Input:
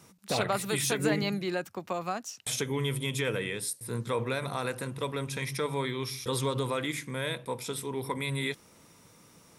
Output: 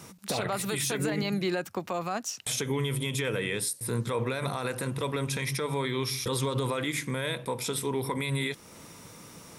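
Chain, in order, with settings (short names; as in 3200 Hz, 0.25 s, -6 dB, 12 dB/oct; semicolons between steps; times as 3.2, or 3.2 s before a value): compressor 1.5:1, threshold -42 dBFS, peak gain reduction 7.5 dB; limiter -29 dBFS, peak gain reduction 8.5 dB; gain +9 dB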